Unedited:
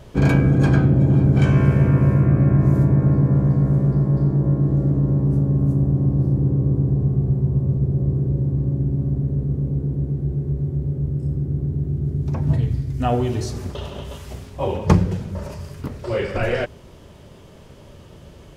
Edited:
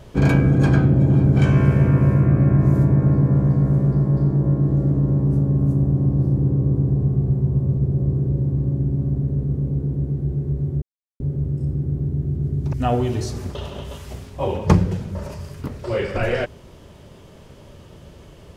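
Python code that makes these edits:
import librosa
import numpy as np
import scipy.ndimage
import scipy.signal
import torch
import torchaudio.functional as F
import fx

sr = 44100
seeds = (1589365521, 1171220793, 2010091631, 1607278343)

y = fx.edit(x, sr, fx.insert_silence(at_s=10.82, length_s=0.38),
    fx.cut(start_s=12.35, length_s=0.58), tone=tone)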